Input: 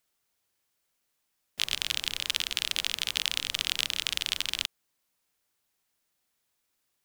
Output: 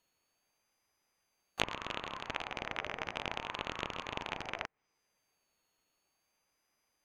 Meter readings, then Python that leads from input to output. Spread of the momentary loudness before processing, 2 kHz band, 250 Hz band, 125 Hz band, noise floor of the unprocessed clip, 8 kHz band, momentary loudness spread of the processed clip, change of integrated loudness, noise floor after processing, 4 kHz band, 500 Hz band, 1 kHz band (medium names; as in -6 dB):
4 LU, -5.5 dB, +5.5 dB, +2.0 dB, -78 dBFS, -19.0 dB, 4 LU, -10.5 dB, -81 dBFS, -15.5 dB, +9.0 dB, +6.5 dB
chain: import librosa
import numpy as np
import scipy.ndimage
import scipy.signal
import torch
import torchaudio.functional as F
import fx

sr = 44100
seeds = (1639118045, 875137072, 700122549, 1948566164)

y = np.r_[np.sort(x[:len(x) // 8 * 8].reshape(-1, 8), axis=1).ravel(), x[len(x) // 8 * 8:]]
y = fx.high_shelf(y, sr, hz=5600.0, db=-3.5)
y = fx.env_lowpass_down(y, sr, base_hz=1500.0, full_db=-34.5)
y = fx.graphic_eq_15(y, sr, hz=(160, 1600, 4000, 16000), db=(6, 6, -7, -6))
y = fx.ring_lfo(y, sr, carrier_hz=860.0, swing_pct=30, hz=0.52)
y = F.gain(torch.from_numpy(y), 4.5).numpy()